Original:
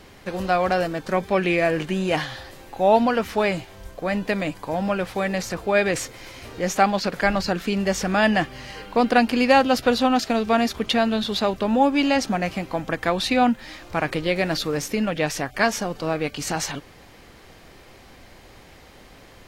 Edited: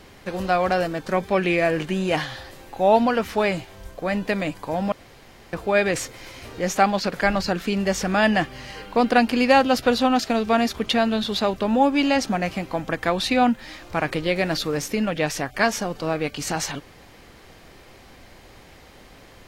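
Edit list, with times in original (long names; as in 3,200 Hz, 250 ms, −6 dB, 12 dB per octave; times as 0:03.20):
0:04.92–0:05.53: fill with room tone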